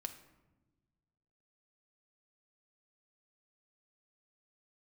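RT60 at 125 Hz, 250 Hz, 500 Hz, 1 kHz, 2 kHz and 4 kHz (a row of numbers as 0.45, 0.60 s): 2.0, 1.8, 1.3, 1.0, 0.80, 0.60 s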